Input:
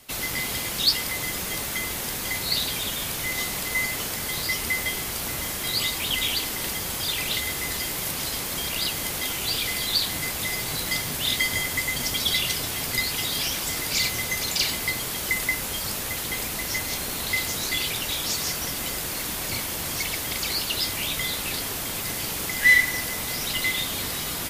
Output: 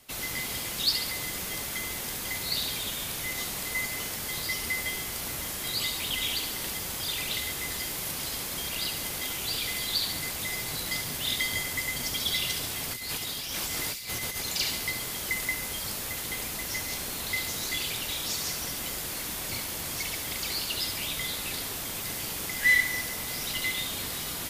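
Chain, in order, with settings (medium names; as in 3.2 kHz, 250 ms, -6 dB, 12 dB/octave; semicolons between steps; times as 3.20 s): 12.91–14.45 s: compressor with a negative ratio -29 dBFS, ratio -0.5; on a send: feedback echo behind a high-pass 70 ms, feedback 59%, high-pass 2.7 kHz, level -7 dB; on the sum: trim -5.5 dB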